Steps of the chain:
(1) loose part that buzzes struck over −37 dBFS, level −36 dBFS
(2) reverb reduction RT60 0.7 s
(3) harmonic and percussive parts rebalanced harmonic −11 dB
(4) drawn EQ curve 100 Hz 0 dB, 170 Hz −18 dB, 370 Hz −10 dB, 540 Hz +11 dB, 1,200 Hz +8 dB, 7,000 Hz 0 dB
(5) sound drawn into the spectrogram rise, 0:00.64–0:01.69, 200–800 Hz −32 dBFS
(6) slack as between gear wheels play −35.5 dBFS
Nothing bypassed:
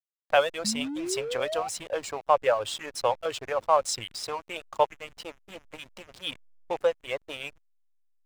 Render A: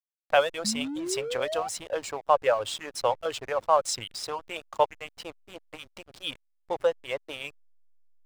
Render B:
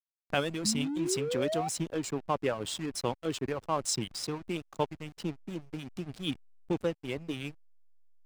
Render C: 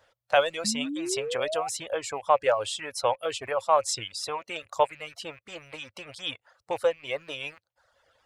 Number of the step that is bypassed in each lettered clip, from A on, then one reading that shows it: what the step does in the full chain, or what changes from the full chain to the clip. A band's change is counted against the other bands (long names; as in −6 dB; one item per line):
1, change in momentary loudness spread −2 LU
4, 125 Hz band +16.0 dB
6, distortion level −15 dB